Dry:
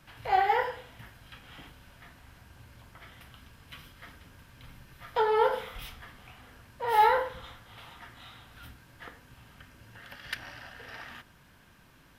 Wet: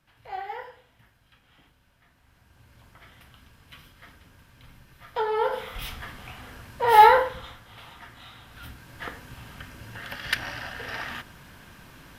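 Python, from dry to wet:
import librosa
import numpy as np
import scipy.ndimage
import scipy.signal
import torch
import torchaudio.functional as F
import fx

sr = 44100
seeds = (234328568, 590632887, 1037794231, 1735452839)

y = fx.gain(x, sr, db=fx.line((2.05, -10.5), (2.84, -1.0), (5.43, -1.0), (5.93, 9.0), (6.99, 9.0), (7.62, 2.5), (8.35, 2.5), (9.08, 10.0)))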